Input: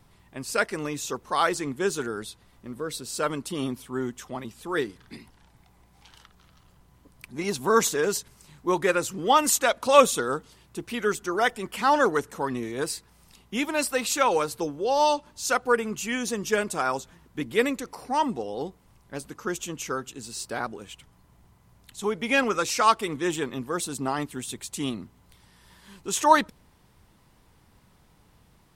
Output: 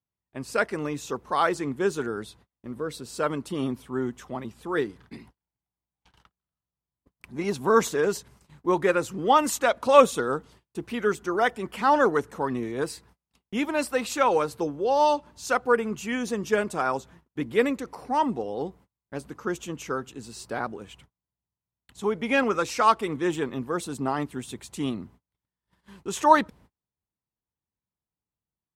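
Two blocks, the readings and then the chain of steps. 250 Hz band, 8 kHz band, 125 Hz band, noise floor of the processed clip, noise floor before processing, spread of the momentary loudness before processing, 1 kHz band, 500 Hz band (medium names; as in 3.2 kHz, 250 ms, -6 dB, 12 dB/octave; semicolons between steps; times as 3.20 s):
+1.5 dB, -7.5 dB, +1.5 dB, under -85 dBFS, -60 dBFS, 15 LU, +0.5 dB, +1.0 dB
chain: high-pass 40 Hz 24 dB/octave; gate -51 dBFS, range -36 dB; treble shelf 2.8 kHz -10 dB; trim +1.5 dB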